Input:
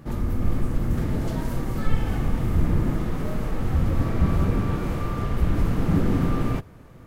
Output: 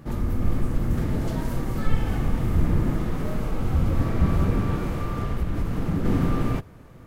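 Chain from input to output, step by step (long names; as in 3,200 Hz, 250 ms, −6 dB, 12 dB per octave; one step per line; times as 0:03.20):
0:03.41–0:03.93: notch filter 1,800 Hz, Q 9.9
0:04.81–0:06.05: downward compressor 4 to 1, threshold −21 dBFS, peak gain reduction 6.5 dB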